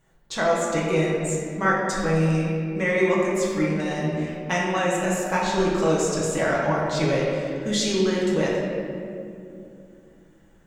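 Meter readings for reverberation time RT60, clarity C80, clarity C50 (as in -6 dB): 2.6 s, 1.5 dB, -0.5 dB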